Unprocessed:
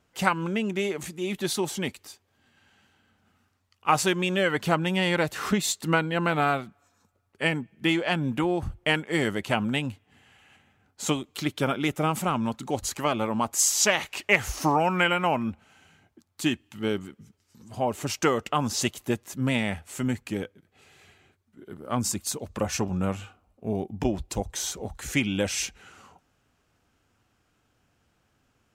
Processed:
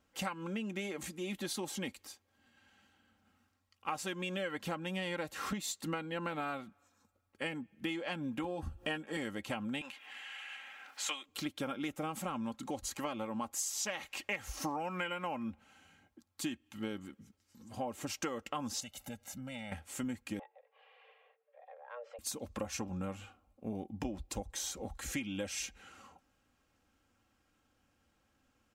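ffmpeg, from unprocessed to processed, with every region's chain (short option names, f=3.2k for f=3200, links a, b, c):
-filter_complex "[0:a]asettb=1/sr,asplit=3[a][b][c];[a]atrim=end=8.434[d];[b]atrim=start=8.43:end=9.17,asetpts=PTS-STARTPTS,afade=t=in:d=0.004:c=qsin,afade=t=out:st=0.736:d=0.004:c=qsin,acompressor=mode=upward:threshold=-30dB:ratio=2.5:attack=3.2:release=140:knee=2.83:detection=peak,asuperstop=centerf=2100:order=4:qfactor=6.9,asplit=2[e][f];[f]adelay=13,volume=-4dB[g];[e][g]amix=inputs=2:normalize=0,atrim=end_sample=32634[h];[c]atrim=start=9.166[i];[d][h]acrossfade=d=0.004:c1=hsin:c2=qsin[j];[j][i]acrossfade=d=0.004:c1=qsin:c2=hsin,asettb=1/sr,asplit=3[k][l][m];[k]atrim=end=9.814[n];[l]atrim=start=9.81:end=11.26,asetpts=PTS-STARTPTS,afade=t=in:d=0.004:c=qsin,afade=t=out:st=1.446:d=0.004:c=qsin,highpass=690,equalizer=f=2.3k:w=0.59:g=10.5,acompressor=mode=upward:threshold=-32dB:ratio=2.5:attack=3.2:release=140:knee=2.83:detection=peak[o];[m]atrim=start=11.256[p];[n][o]acrossfade=d=0.004:c1=hsin:c2=qsin[q];[q][p]acrossfade=d=0.004:c1=qsin:c2=hsin,asettb=1/sr,asplit=3[r][s][t];[r]atrim=end=18.804[u];[s]atrim=start=18.8:end=19.72,asetpts=PTS-STARTPTS,afade=t=in:d=0.004:c=qsin,afade=t=out:st=0.916:d=0.004:c=qsin,bandreject=f=1.4k:w=20,aecho=1:1:1.4:0.88,atrim=end_sample=40572,acompressor=threshold=-37dB:ratio=4:attack=3.2:release=140:knee=1:detection=peak[v];[t]atrim=start=19.716[w];[u][v]acrossfade=d=0.004:c1=hsin:c2=qsin[x];[x][w]acrossfade=d=0.004:c1=qsin:c2=hsin,asettb=1/sr,asplit=3[y][z][aa];[y]atrim=end=20.394[ab];[z]atrim=start=20.39:end=22.19,asetpts=PTS-STARTPTS,afade=t=in:d=0.004:c=qsin,afade=t=out:st=1.796:d=0.004:c=qsin,lowpass=f=2.5k:w=0.5412,lowpass=f=2.5k:w=1.3066,acompressor=threshold=-49dB:ratio=2:attack=3.2:release=140:knee=1:detection=peak,afreqshift=360[ac];[aa]atrim=start=22.186[ad];[ab][ac]acrossfade=d=0.004:c1=hsin:c2=qsin[ae];[ae][ad]acrossfade=d=0.004:c1=qsin:c2=hsin,aecho=1:1:3.7:0.47,acompressor=threshold=-30dB:ratio=4,volume=-6dB"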